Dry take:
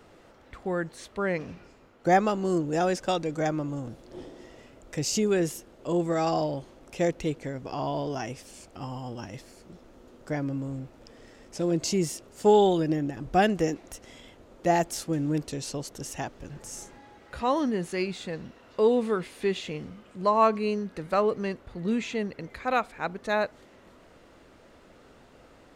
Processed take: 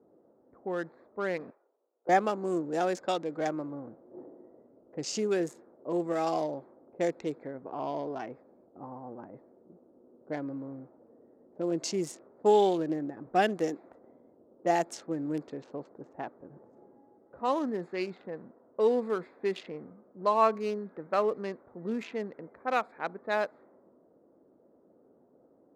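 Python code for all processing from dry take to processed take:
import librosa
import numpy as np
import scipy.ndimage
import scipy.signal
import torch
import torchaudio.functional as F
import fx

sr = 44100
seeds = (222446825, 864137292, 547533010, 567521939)

y = fx.chain(x, sr, fx.law_mismatch(coded='A'),
    fx.highpass(hz=430.0, slope=24),
    fx.tube_stage(drive_db=32.0, bias=0.5), at=(1.5, 2.09))
y = fx.wiener(y, sr, points=15)
y = fx.env_lowpass(y, sr, base_hz=430.0, full_db=-23.5)
y = scipy.signal.sosfilt(scipy.signal.butter(2, 260.0, 'highpass', fs=sr, output='sos'), y)
y = y * 10.0 ** (-2.5 / 20.0)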